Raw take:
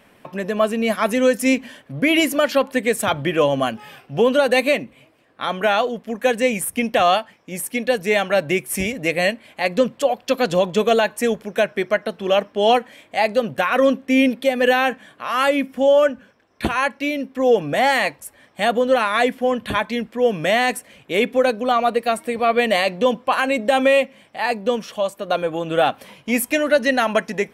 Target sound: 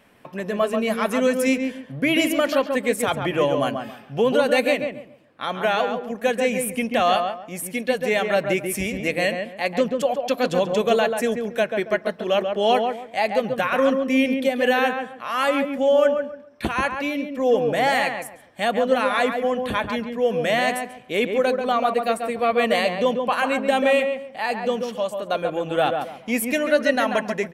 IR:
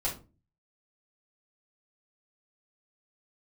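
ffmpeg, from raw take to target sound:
-filter_complex "[0:a]asplit=2[a][b];[b]adelay=138,lowpass=f=1.6k:p=1,volume=-4.5dB,asplit=2[c][d];[d]adelay=138,lowpass=f=1.6k:p=1,volume=0.27,asplit=2[e][f];[f]adelay=138,lowpass=f=1.6k:p=1,volume=0.27,asplit=2[g][h];[h]adelay=138,lowpass=f=1.6k:p=1,volume=0.27[i];[a][c][e][g][i]amix=inputs=5:normalize=0,volume=-3.5dB"

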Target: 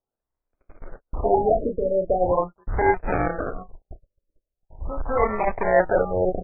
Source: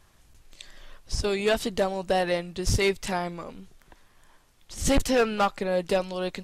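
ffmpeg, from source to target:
-filter_complex "[0:a]lowpass=f=3.8k:p=1,alimiter=limit=-20.5dB:level=0:latency=1:release=73,asplit=2[a][b];[b]adelay=33,volume=-5.5dB[c];[a][c]amix=inputs=2:normalize=0,aresample=11025,acrusher=samples=9:mix=1:aa=0.000001:lfo=1:lforange=5.4:lforate=0.35,aresample=44100,asubboost=boost=9.5:cutoff=70,areverse,acompressor=threshold=-24dB:ratio=16,areverse,agate=range=-37dB:threshold=-35dB:ratio=16:detection=peak,equalizer=f=840:w=0.34:g=15,afftfilt=real='re*lt(b*sr/1024,600*pow(2600/600,0.5+0.5*sin(2*PI*0.41*pts/sr)))':imag='im*lt(b*sr/1024,600*pow(2600/600,0.5+0.5*sin(2*PI*0.41*pts/sr)))':win_size=1024:overlap=0.75"

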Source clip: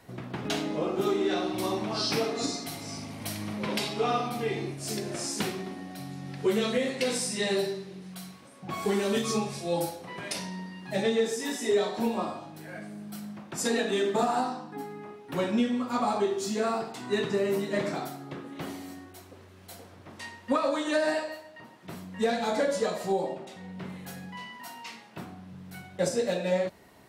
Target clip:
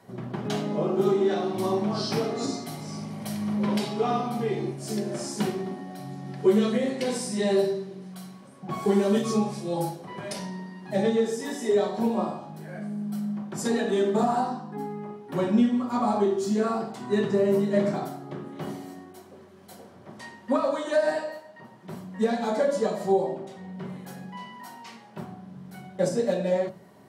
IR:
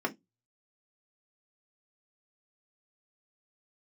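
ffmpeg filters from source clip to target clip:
-filter_complex "[0:a]asplit=2[a][b];[1:a]atrim=start_sample=2205,asetrate=23814,aresample=44100[c];[b][c]afir=irnorm=-1:irlink=0,volume=-7dB[d];[a][d]amix=inputs=2:normalize=0,volume=-6dB"

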